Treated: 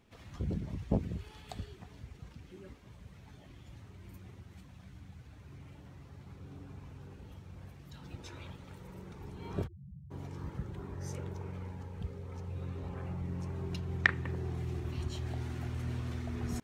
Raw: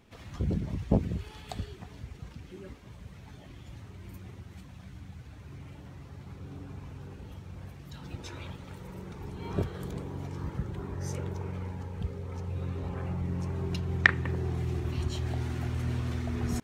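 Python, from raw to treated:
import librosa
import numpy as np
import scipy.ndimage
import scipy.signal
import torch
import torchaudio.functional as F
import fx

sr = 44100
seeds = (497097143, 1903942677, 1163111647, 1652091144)

y = fx.spec_topn(x, sr, count=2, at=(9.66, 10.1), fade=0.02)
y = y * 10.0 ** (-5.5 / 20.0)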